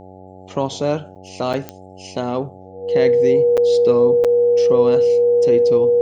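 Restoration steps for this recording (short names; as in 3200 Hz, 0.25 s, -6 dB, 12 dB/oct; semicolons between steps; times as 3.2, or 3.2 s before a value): de-click; de-hum 93.7 Hz, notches 9; notch 480 Hz, Q 30; interpolate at 1.15/1.53/3.57/4.24, 7 ms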